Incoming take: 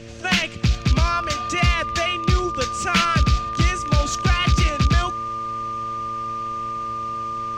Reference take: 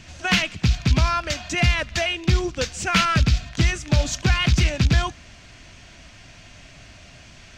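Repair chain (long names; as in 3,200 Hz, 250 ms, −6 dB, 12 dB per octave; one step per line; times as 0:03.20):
hum removal 113.8 Hz, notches 5
notch filter 1,200 Hz, Q 30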